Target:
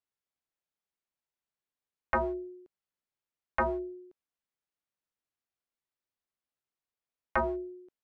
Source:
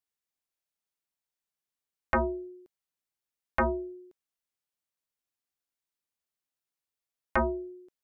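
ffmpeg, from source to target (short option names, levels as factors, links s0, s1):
-filter_complex "[0:a]lowpass=f=2400:p=1,acrossover=split=440[s0][s1];[s0]volume=53.1,asoftclip=hard,volume=0.0188[s2];[s2][s1]amix=inputs=2:normalize=0"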